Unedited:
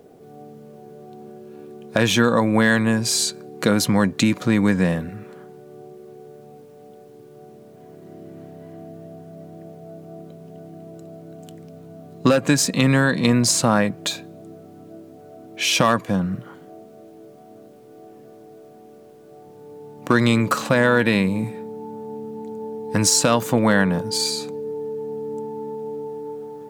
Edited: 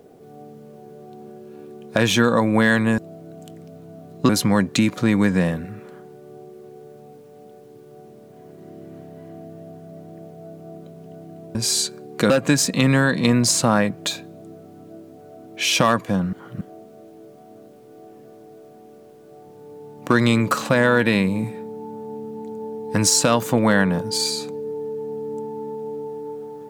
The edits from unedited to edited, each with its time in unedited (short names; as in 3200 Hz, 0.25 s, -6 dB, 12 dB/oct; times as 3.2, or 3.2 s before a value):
2.98–3.73 swap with 10.99–12.3
16.33–16.61 reverse